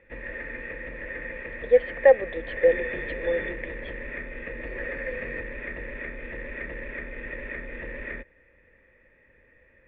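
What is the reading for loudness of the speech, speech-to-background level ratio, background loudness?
-23.5 LUFS, 11.5 dB, -35.0 LUFS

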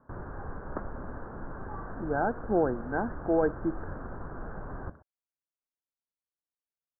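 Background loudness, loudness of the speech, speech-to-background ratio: -42.0 LUFS, -31.0 LUFS, 11.0 dB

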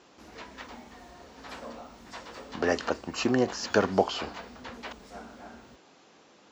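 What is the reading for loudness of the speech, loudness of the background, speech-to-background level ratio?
-28.5 LUFS, -48.5 LUFS, 20.0 dB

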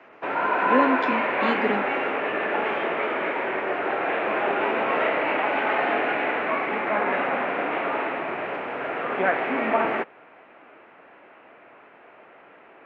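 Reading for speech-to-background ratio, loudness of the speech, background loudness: -3.0 dB, -27.5 LUFS, -24.5 LUFS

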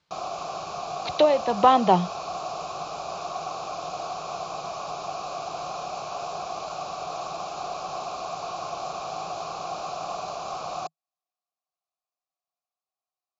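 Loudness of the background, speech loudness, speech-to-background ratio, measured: -33.5 LUFS, -20.5 LUFS, 13.0 dB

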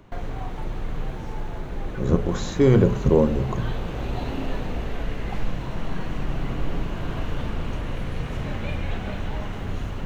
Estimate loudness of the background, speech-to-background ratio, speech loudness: -32.0 LUFS, 10.5 dB, -21.5 LUFS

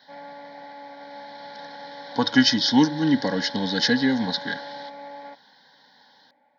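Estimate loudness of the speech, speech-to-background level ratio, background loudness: -22.0 LUFS, 18.0 dB, -40.0 LUFS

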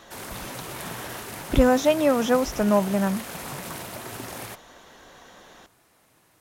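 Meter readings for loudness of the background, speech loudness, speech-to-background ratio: -36.0 LUFS, -22.0 LUFS, 14.0 dB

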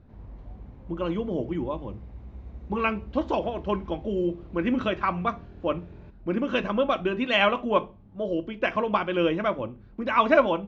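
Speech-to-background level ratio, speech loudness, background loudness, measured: 19.0 dB, -27.0 LUFS, -46.0 LUFS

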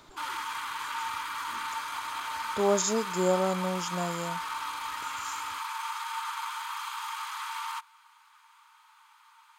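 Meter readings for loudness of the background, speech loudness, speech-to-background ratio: -35.0 LUFS, -30.0 LUFS, 5.0 dB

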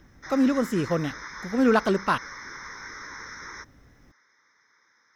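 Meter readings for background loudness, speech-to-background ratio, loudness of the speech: -39.0 LUFS, 14.5 dB, -24.5 LUFS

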